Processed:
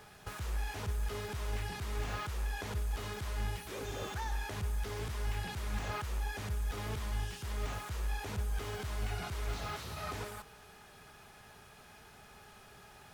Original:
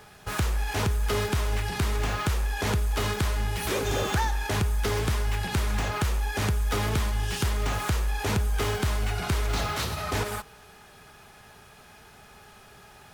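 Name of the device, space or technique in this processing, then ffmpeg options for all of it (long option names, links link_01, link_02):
de-esser from a sidechain: -filter_complex "[0:a]asplit=2[link_01][link_02];[link_02]highpass=frequency=5800:width=0.5412,highpass=frequency=5800:width=1.3066,apad=whole_len=579464[link_03];[link_01][link_03]sidechaincompress=threshold=-47dB:ratio=5:attack=0.93:release=23,volume=-5dB"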